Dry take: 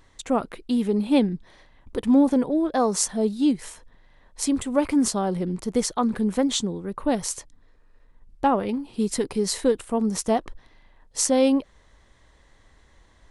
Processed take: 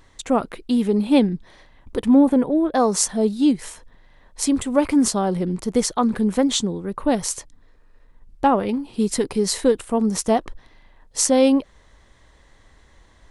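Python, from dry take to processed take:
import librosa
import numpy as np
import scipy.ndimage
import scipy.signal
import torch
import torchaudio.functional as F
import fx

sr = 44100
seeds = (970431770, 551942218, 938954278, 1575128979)

y = fx.peak_eq(x, sr, hz=5600.0, db=-13.0, octaves=0.9, at=(2.08, 2.75))
y = y * librosa.db_to_amplitude(3.5)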